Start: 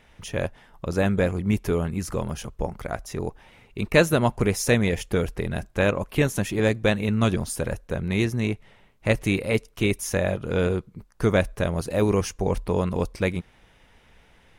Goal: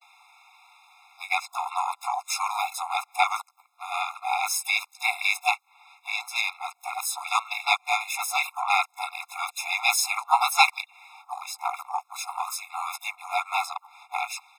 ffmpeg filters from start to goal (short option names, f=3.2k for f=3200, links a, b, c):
-filter_complex "[0:a]areverse,asplit=3[a][b][c];[b]asetrate=37084,aresample=44100,atempo=1.18921,volume=-5dB[d];[c]asetrate=58866,aresample=44100,atempo=0.749154,volume=-7dB[e];[a][d][e]amix=inputs=3:normalize=0,afftfilt=real='re*eq(mod(floor(b*sr/1024/690),2),1)':imag='im*eq(mod(floor(b*sr/1024/690),2),1)':win_size=1024:overlap=0.75,volume=6dB"